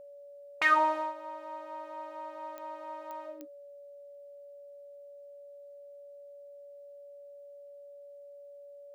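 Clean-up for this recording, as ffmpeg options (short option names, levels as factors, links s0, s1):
-af "adeclick=t=4,bandreject=f=570:w=30"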